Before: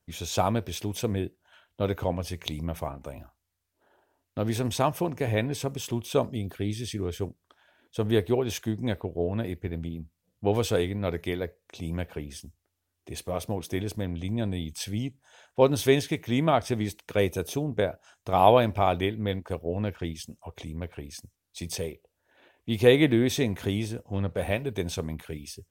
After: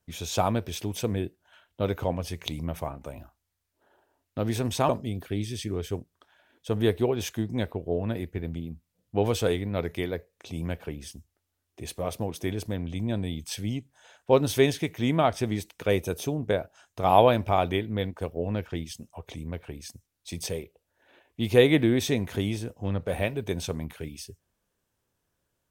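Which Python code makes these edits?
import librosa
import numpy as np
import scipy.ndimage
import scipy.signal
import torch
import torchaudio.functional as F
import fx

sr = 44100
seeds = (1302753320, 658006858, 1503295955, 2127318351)

y = fx.edit(x, sr, fx.cut(start_s=4.89, length_s=1.29), tone=tone)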